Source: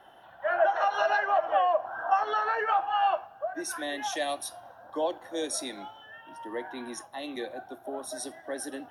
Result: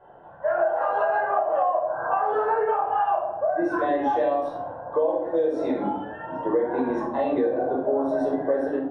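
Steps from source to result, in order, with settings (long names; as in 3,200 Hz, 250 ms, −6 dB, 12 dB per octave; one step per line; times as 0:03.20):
parametric band 470 Hz +6 dB 0.35 octaves
rectangular room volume 810 cubic metres, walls furnished, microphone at 5.1 metres
automatic gain control gain up to 12.5 dB
low-pass filter 1,000 Hz 12 dB per octave
downward compressor 6 to 1, threshold −20 dBFS, peak gain reduction 12 dB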